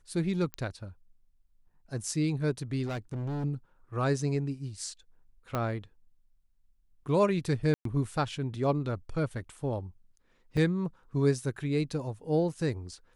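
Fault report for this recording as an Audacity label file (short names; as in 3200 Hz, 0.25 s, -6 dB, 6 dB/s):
0.540000	0.540000	pop -20 dBFS
2.860000	3.450000	clipped -31 dBFS
5.550000	5.550000	pop -17 dBFS
7.740000	7.850000	gap 0.113 s
10.570000	10.570000	gap 3.4 ms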